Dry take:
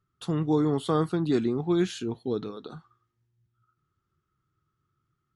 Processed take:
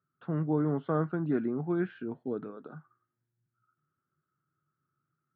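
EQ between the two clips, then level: distance through air 83 m; cabinet simulation 150–2200 Hz, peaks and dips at 150 Hz +8 dB, 260 Hz +5 dB, 600 Hz +8 dB, 1.5 kHz +9 dB; -7.0 dB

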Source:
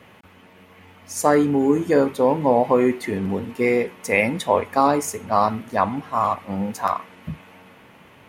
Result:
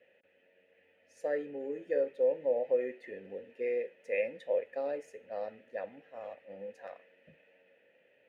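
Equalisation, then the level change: vowel filter e; -6.5 dB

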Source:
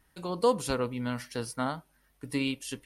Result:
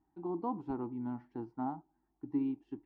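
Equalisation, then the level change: two resonant band-passes 520 Hz, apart 1.3 oct; distance through air 76 m; tilt EQ -4 dB/octave; 0.0 dB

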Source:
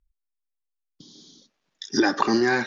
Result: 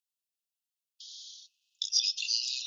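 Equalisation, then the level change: brick-wall FIR high-pass 2.5 kHz; +4.5 dB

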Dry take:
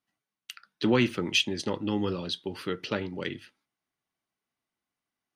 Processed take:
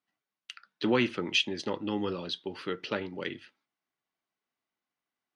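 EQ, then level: distance through air 88 m; bass shelf 160 Hz -11.5 dB; 0.0 dB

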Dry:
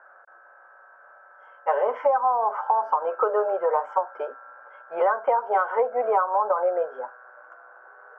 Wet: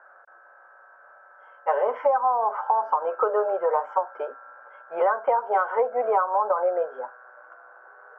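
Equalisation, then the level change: distance through air 69 m; 0.0 dB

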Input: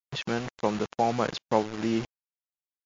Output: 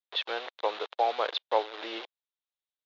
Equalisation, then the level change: inverse Chebyshev high-pass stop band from 180 Hz, stop band 50 dB; resonant low-pass 3.7 kHz, resonance Q 5.4; treble shelf 2.7 kHz -11 dB; 0.0 dB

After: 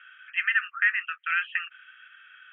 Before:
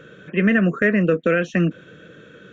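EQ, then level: Chebyshev band-pass 1.2–3.2 kHz, order 5; treble shelf 2.4 kHz +10.5 dB; -4.0 dB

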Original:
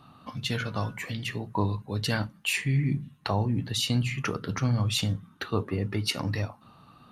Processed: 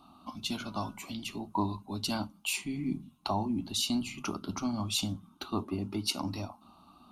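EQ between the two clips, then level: static phaser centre 480 Hz, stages 6; 0.0 dB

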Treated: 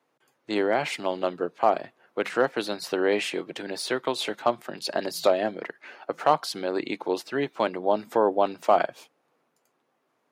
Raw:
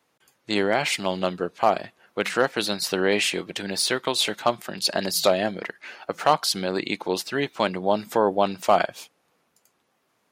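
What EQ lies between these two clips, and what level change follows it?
high-pass 140 Hz 24 dB/octave; peaking EQ 190 Hz -13.5 dB 0.23 oct; treble shelf 2.2 kHz -11 dB; 0.0 dB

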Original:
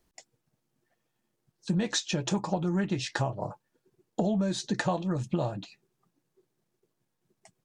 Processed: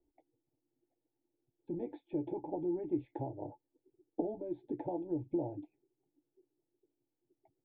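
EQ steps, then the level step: cascade formant filter u; peaking EQ 3.2 kHz +12 dB 2.3 oct; static phaser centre 480 Hz, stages 4; +7.0 dB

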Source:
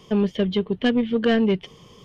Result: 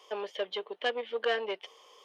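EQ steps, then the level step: high-pass 520 Hz 24 dB/octave; peaking EQ 700 Hz +4 dB 1.5 oct; band-stop 670 Hz, Q 17; -5.5 dB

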